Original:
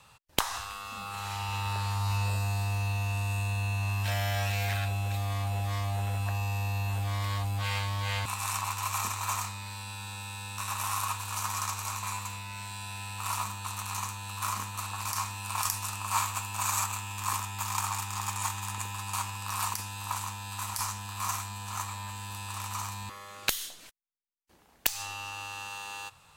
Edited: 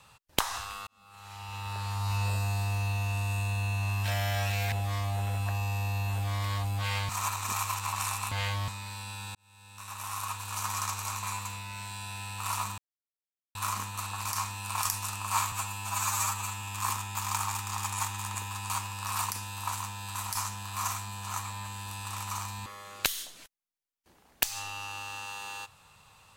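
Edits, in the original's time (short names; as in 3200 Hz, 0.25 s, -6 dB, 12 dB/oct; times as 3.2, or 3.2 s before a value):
0.87–2.27 fade in
4.72–5.52 cut
7.89–9.48 reverse
10.15–11.52 fade in
13.58–14.35 mute
16.32–17.05 stretch 1.5×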